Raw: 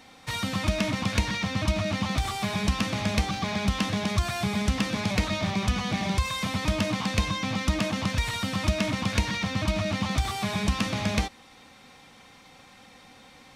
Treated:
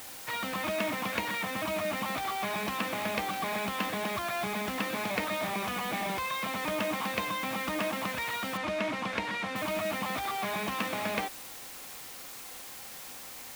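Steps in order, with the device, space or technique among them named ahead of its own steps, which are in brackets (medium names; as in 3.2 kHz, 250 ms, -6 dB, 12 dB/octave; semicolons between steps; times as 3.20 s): wax cylinder (band-pass 350–2600 Hz; wow and flutter 20 cents; white noise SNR 11 dB); 8.57–9.56 s: distance through air 69 m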